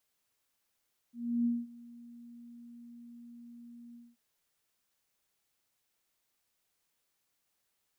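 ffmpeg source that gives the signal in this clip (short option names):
-f lavfi -i "aevalsrc='0.0531*sin(2*PI*237*t)':d=3.033:s=44100,afade=t=in:d=0.322,afade=t=out:st=0.322:d=0.212:silence=0.075,afade=t=out:st=2.82:d=0.213"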